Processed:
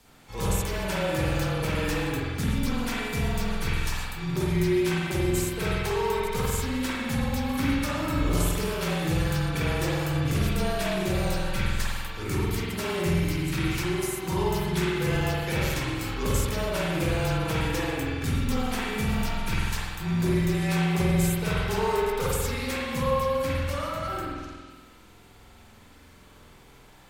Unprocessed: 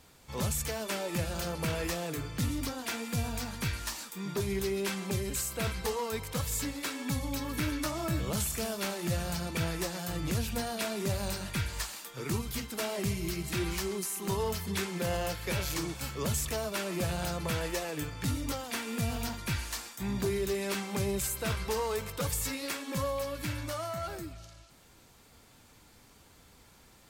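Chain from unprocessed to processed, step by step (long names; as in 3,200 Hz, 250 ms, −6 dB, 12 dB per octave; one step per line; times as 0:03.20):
notch filter 680 Hz, Q 15
frequency shifter −27 Hz
spring reverb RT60 1.6 s, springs 47 ms, chirp 45 ms, DRR −6.5 dB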